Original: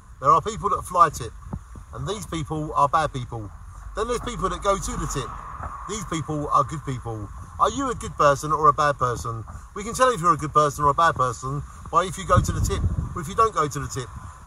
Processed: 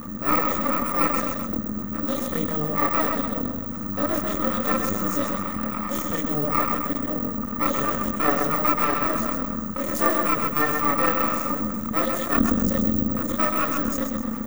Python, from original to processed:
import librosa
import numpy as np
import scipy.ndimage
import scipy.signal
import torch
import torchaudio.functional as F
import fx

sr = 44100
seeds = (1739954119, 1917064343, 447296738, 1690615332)

y = (np.kron(scipy.signal.resample_poly(x, 1, 2), np.eye(2)[0]) * 2)[:len(x)]
y = fx.chorus_voices(y, sr, voices=4, hz=0.71, base_ms=29, depth_ms=2.5, mix_pct=55)
y = y * np.sin(2.0 * np.pi * 150.0 * np.arange(len(y)) / sr)
y = fx.echo_feedback(y, sr, ms=129, feedback_pct=39, wet_db=-7.5)
y = np.maximum(y, 0.0)
y = fx.high_shelf(y, sr, hz=7300.0, db=5.0)
y = fx.small_body(y, sr, hz=(230.0, 520.0, 1200.0, 1800.0), ring_ms=30, db=14)
y = fx.env_flatten(y, sr, amount_pct=50)
y = y * librosa.db_to_amplitude(-5.0)